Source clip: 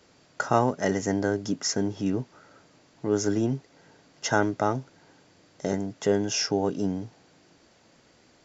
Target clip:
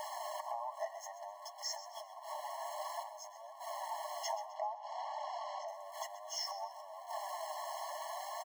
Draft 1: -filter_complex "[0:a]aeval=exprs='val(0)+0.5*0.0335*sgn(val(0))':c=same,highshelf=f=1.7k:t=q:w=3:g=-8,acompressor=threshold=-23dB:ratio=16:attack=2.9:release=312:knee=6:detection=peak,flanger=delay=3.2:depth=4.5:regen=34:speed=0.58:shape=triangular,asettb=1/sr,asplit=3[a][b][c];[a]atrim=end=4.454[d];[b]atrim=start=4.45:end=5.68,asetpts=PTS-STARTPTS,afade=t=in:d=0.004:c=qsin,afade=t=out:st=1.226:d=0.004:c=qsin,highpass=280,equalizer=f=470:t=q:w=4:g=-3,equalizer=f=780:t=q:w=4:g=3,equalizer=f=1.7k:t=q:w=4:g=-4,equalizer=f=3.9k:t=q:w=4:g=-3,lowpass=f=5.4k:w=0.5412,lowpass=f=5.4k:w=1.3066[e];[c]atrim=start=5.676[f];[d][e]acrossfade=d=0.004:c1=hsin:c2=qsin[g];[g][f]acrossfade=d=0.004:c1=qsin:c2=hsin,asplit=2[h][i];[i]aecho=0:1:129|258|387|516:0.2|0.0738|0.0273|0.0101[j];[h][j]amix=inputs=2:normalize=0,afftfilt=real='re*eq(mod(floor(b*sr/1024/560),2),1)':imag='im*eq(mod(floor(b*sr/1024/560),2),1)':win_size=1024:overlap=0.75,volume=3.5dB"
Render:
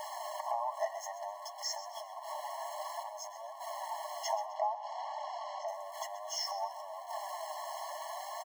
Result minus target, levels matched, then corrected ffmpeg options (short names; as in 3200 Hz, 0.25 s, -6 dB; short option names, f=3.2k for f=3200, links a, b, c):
compressor: peak gain reduction -6 dB
-filter_complex "[0:a]aeval=exprs='val(0)+0.5*0.0335*sgn(val(0))':c=same,highshelf=f=1.7k:t=q:w=3:g=-8,acompressor=threshold=-29.5dB:ratio=16:attack=2.9:release=312:knee=6:detection=peak,flanger=delay=3.2:depth=4.5:regen=34:speed=0.58:shape=triangular,asettb=1/sr,asplit=3[a][b][c];[a]atrim=end=4.454[d];[b]atrim=start=4.45:end=5.68,asetpts=PTS-STARTPTS,afade=t=in:d=0.004:c=qsin,afade=t=out:st=1.226:d=0.004:c=qsin,highpass=280,equalizer=f=470:t=q:w=4:g=-3,equalizer=f=780:t=q:w=4:g=3,equalizer=f=1.7k:t=q:w=4:g=-4,equalizer=f=3.9k:t=q:w=4:g=-3,lowpass=f=5.4k:w=0.5412,lowpass=f=5.4k:w=1.3066[e];[c]atrim=start=5.676[f];[d][e]acrossfade=d=0.004:c1=hsin:c2=qsin[g];[g][f]acrossfade=d=0.004:c1=qsin:c2=hsin,asplit=2[h][i];[i]aecho=0:1:129|258|387|516:0.2|0.0738|0.0273|0.0101[j];[h][j]amix=inputs=2:normalize=0,afftfilt=real='re*eq(mod(floor(b*sr/1024/560),2),1)':imag='im*eq(mod(floor(b*sr/1024/560),2),1)':win_size=1024:overlap=0.75,volume=3.5dB"